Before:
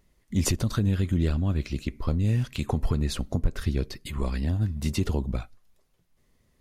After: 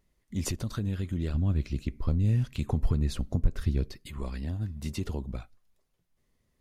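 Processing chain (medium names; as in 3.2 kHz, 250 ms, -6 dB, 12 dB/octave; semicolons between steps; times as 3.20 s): 1.34–3.92 s: bass shelf 270 Hz +7.5 dB; trim -7 dB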